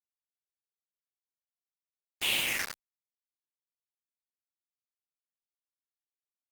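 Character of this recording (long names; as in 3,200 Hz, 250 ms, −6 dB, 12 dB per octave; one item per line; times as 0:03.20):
phaser sweep stages 6, 0.97 Hz, lowest notch 730–1,500 Hz
a quantiser's noise floor 6 bits, dither none
Opus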